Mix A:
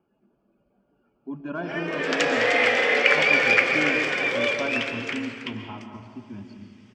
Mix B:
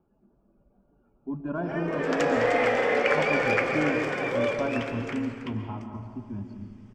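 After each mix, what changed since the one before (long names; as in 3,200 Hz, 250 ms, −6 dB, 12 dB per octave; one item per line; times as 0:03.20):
master: remove meter weighting curve D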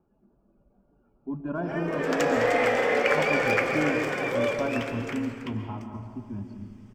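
background: remove high-frequency loss of the air 52 metres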